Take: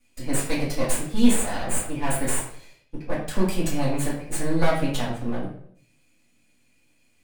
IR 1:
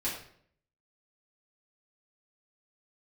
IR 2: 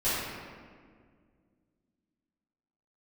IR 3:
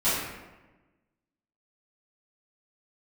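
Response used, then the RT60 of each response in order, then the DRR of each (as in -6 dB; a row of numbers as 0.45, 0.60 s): 1; 0.60, 1.9, 1.2 s; -9.0, -14.5, -15.0 dB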